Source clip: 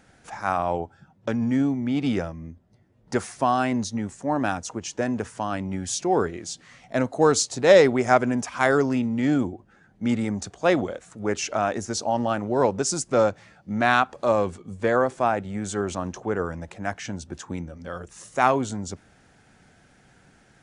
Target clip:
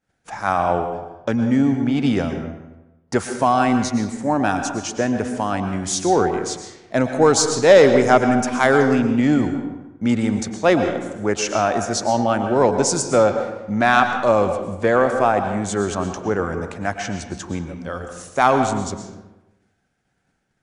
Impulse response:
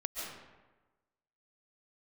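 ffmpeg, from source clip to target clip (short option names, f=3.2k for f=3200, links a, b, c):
-filter_complex "[0:a]agate=range=-33dB:threshold=-43dB:ratio=3:detection=peak,acontrast=39,asplit=2[a][b];[1:a]atrim=start_sample=2205,asetrate=52920,aresample=44100[c];[b][c]afir=irnorm=-1:irlink=0,volume=-2dB[d];[a][d]amix=inputs=2:normalize=0,volume=-4dB"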